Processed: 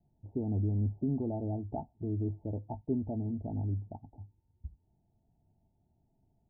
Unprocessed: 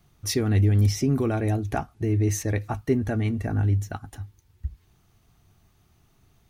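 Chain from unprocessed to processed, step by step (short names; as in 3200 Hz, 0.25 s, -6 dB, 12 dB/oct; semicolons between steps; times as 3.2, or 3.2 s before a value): rippled Chebyshev low-pass 920 Hz, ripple 6 dB; gain -7 dB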